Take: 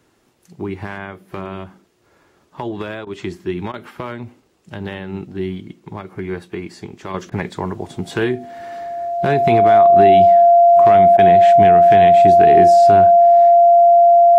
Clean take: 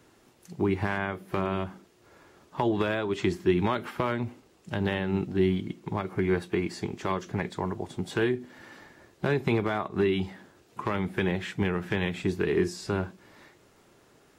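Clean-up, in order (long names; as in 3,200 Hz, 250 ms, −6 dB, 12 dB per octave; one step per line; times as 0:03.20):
notch filter 690 Hz, Q 30
repair the gap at 0:03.05/0:03.72/0:07.30/0:11.17, 16 ms
level 0 dB, from 0:07.14 −7 dB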